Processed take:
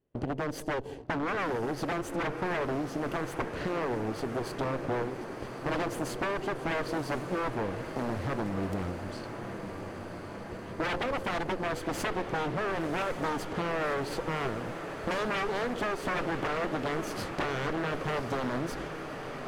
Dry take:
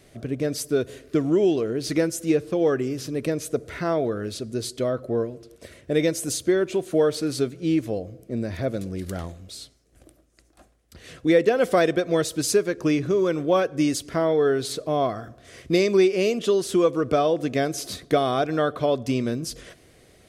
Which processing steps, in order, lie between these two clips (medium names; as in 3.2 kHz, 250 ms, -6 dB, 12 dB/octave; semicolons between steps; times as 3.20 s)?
comb filter that takes the minimum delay 0.67 ms; resonant low shelf 790 Hz +8 dB, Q 1.5; gate -38 dBFS, range -29 dB; wavefolder -16 dBFS; tone controls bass -5 dB, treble -7 dB; compression 4:1, threshold -31 dBFS, peak gain reduction 10 dB; level-controlled noise filter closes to 2.6 kHz, open at -33 dBFS; on a send: echo that smears into a reverb 1148 ms, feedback 79%, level -10 dB; on the sum: speed mistake 24 fps film run at 25 fps; loudspeaker Doppler distortion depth 0.33 ms